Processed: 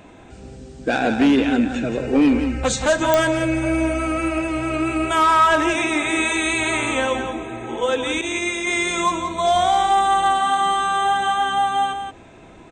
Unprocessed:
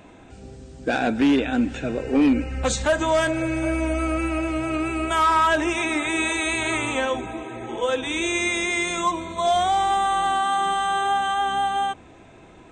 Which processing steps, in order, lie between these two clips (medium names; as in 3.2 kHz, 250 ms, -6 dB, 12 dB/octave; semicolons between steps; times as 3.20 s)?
8.21–8.67 s: expander -19 dBFS; delay 176 ms -7.5 dB; clicks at 3.14 s, -5 dBFS; trim +2.5 dB